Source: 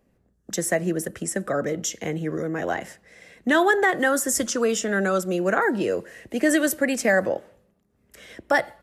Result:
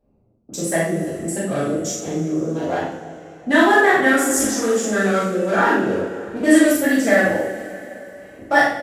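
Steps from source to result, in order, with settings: Wiener smoothing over 25 samples; doubler 42 ms -2 dB; two-slope reverb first 0.5 s, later 3.4 s, from -18 dB, DRR -10 dB; gain -5.5 dB

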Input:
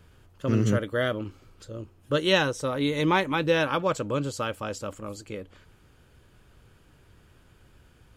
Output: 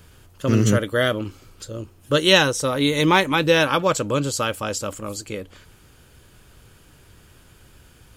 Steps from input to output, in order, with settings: high shelf 4100 Hz +10 dB; gain +5.5 dB

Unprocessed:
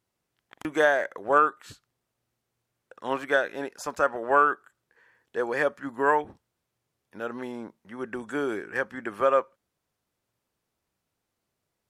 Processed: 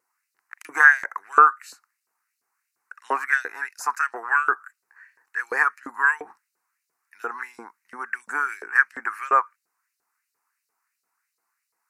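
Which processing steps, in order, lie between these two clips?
fixed phaser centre 1400 Hz, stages 4; vibrato 0.5 Hz 5.9 cents; LFO high-pass saw up 2.9 Hz 470–4300 Hz; gain +7 dB

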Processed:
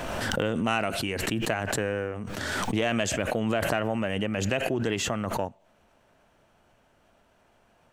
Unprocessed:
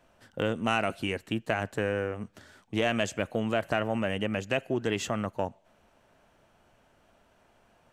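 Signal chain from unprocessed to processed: backwards sustainer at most 21 dB/s

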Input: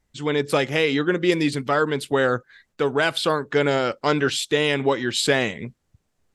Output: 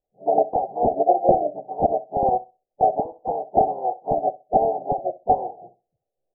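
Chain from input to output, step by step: spectral delay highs late, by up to 0.283 s; resonant low shelf 290 Hz -13 dB, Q 3; harmoniser +4 st -6 dB, +5 st 0 dB, +7 st -1 dB; wrapped overs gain 2.5 dB; formant shift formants +6 st; rippled Chebyshev low-pass 780 Hz, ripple 3 dB; flutter echo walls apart 11 m, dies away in 0.28 s; upward expander 1.5:1, over -30 dBFS; gain +1 dB

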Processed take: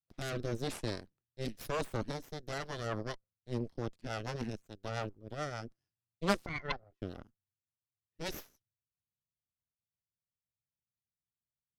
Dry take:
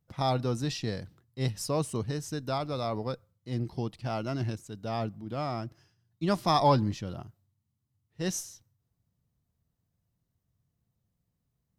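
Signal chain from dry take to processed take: 6.46–7.02 double band-pass 650 Hz, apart 1.4 oct; added harmonics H 2 -8 dB, 3 -12 dB, 7 -32 dB, 8 -14 dB, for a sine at -13.5 dBFS; rotary speaker horn 0.9 Hz, later 7 Hz, at 2.33; gain -1 dB

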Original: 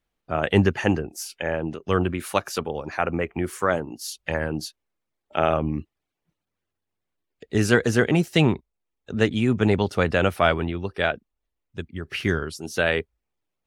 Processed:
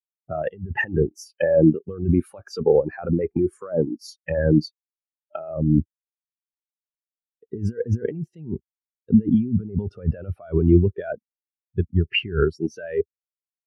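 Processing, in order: 5.55–7.57 treble ducked by the level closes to 1200 Hz, closed at -24.5 dBFS; negative-ratio compressor -28 dBFS, ratio -1; spectral expander 2.5:1; gain +5 dB

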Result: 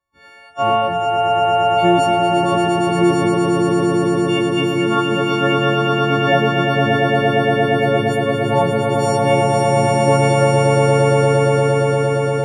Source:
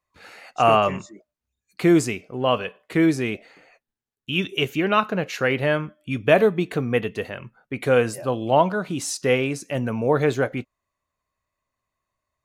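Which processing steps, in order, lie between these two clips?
frequency quantiser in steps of 4 st; LPF 1100 Hz 6 dB/oct; swelling echo 0.116 s, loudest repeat 8, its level -4.5 dB

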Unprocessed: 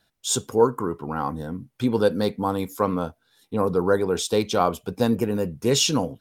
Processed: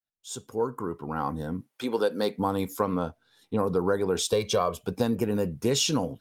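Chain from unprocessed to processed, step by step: opening faded in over 1.63 s; 1.6–2.38 HPF 560 Hz -> 230 Hz 12 dB/oct; 2.97–3.59 high shelf 10000 Hz -10.5 dB; 4.32–4.77 comb 1.8 ms, depth 75%; compressor 6:1, threshold -21 dBFS, peak gain reduction 8.5 dB

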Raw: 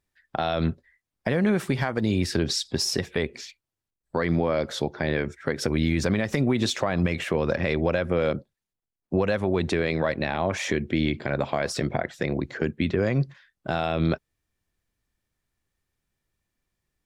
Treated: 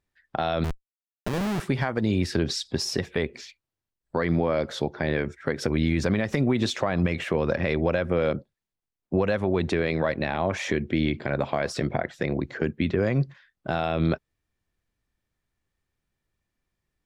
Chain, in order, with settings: 0.64–1.6 Schmitt trigger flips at -25.5 dBFS; high shelf 5800 Hz -7.5 dB

